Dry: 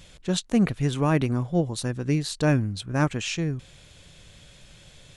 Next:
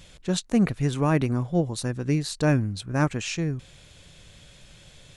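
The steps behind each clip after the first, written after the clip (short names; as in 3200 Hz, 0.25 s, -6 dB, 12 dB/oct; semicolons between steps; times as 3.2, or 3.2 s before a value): dynamic EQ 3200 Hz, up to -4 dB, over -51 dBFS, Q 3.3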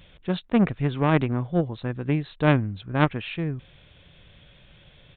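added harmonics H 3 -12 dB, 5 -30 dB, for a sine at -8.5 dBFS; downsampling 8000 Hz; gain +6.5 dB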